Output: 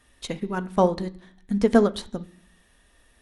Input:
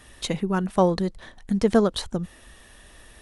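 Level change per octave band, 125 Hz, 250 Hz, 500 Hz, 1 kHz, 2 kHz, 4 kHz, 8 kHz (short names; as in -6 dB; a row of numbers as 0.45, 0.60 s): -3.5, -0.5, 0.0, 0.0, +0.5, -5.0, -5.0 dB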